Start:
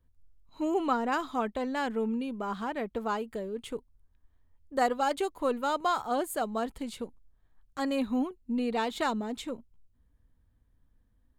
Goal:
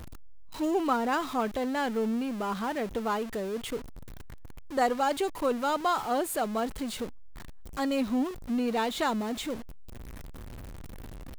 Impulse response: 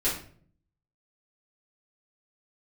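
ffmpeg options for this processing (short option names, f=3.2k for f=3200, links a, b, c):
-af "aeval=exprs='val(0)+0.5*0.0158*sgn(val(0))':c=same"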